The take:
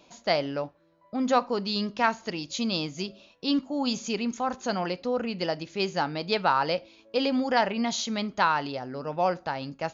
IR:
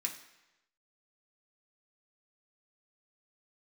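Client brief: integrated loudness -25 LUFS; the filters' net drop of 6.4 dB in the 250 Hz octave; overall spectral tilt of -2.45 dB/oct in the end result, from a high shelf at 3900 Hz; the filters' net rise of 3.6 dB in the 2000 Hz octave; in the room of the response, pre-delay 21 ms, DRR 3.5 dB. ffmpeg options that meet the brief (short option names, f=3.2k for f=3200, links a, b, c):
-filter_complex "[0:a]equalizer=f=250:t=o:g=-7.5,equalizer=f=2k:t=o:g=3.5,highshelf=f=3.9k:g=6,asplit=2[a][b];[1:a]atrim=start_sample=2205,adelay=21[c];[b][c]afir=irnorm=-1:irlink=0,volume=-4.5dB[d];[a][d]amix=inputs=2:normalize=0,volume=1.5dB"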